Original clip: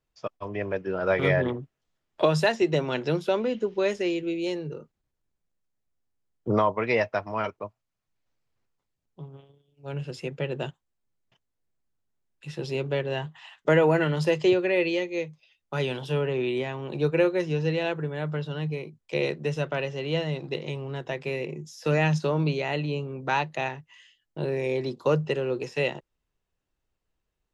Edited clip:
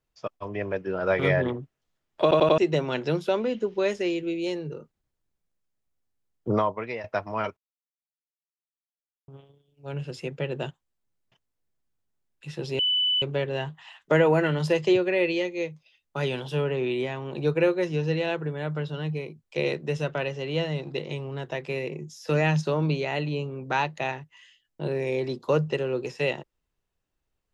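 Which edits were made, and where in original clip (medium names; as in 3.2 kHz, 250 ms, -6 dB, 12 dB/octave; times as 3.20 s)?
2.22 s: stutter in place 0.09 s, 4 plays
6.51–7.04 s: fade out, to -15.5 dB
7.57–9.28 s: mute
12.79 s: add tone 2.99 kHz -20.5 dBFS 0.43 s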